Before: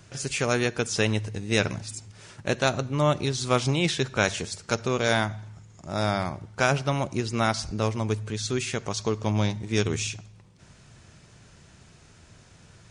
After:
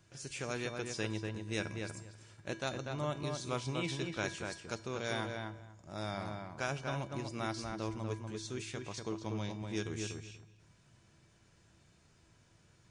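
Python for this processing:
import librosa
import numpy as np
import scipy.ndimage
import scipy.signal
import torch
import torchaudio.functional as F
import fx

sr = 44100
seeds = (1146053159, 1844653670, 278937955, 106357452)

y = fx.comb_fb(x, sr, f0_hz=330.0, decay_s=0.51, harmonics='odd', damping=0.0, mix_pct=80)
y = fx.echo_filtered(y, sr, ms=242, feedback_pct=17, hz=2500.0, wet_db=-4.0)
y = y * 10.0 ** (-1.0 / 20.0)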